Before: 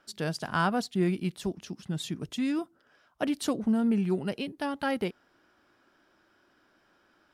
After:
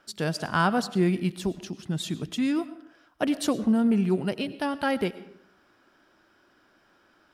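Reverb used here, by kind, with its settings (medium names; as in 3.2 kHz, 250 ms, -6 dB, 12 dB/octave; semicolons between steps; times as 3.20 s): algorithmic reverb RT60 0.73 s, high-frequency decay 0.65×, pre-delay 65 ms, DRR 15 dB; trim +3.5 dB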